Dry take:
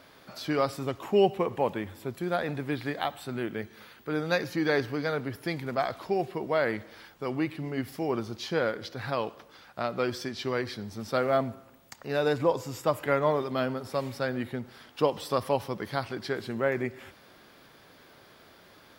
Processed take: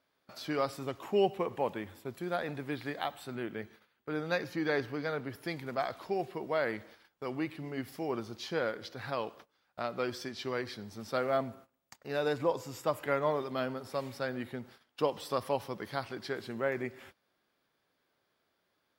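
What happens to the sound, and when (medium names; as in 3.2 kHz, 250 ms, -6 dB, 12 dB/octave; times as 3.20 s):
3.35–5.29 s: tone controls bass +1 dB, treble -4 dB
whole clip: gate -47 dBFS, range -18 dB; bass shelf 190 Hz -4.5 dB; trim -4.5 dB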